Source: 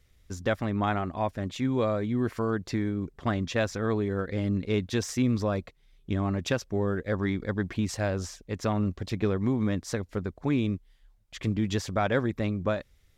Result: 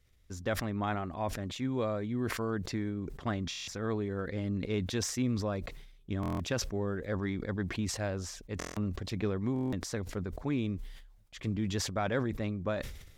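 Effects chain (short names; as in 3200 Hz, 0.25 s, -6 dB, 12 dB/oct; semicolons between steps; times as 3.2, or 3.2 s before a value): stuck buffer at 3.49/6.21/8.58/9.54, samples 1024, times 7; sustainer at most 59 dB/s; gain -6 dB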